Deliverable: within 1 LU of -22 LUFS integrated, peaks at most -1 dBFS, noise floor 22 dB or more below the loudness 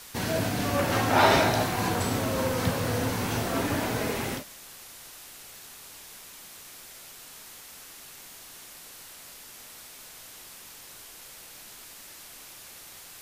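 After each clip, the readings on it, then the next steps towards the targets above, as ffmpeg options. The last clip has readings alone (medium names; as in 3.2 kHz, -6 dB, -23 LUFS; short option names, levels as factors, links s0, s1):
noise floor -47 dBFS; noise floor target -48 dBFS; loudness -26.0 LUFS; peak level -8.0 dBFS; loudness target -22.0 LUFS
-> -af "afftdn=nr=6:nf=-47"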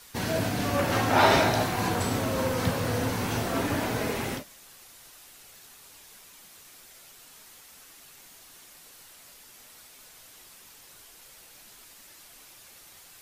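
noise floor -52 dBFS; loudness -26.5 LUFS; peak level -8.0 dBFS; loudness target -22.0 LUFS
-> -af "volume=1.68"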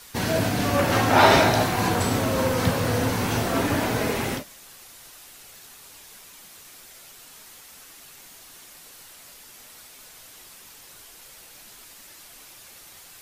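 loudness -22.0 LUFS; peak level -3.5 dBFS; noise floor -47 dBFS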